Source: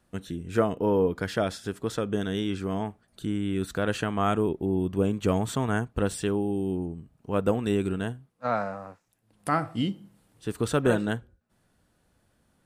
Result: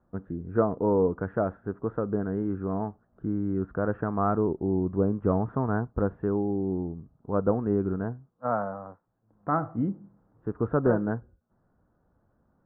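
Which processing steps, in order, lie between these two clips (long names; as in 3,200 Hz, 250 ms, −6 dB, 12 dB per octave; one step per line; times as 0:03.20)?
Butterworth low-pass 1,400 Hz 36 dB per octave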